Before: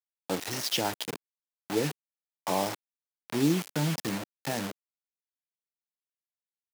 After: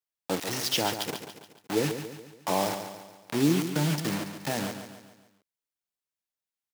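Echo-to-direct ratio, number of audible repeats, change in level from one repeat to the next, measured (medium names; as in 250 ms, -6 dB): -8.0 dB, 5, -6.5 dB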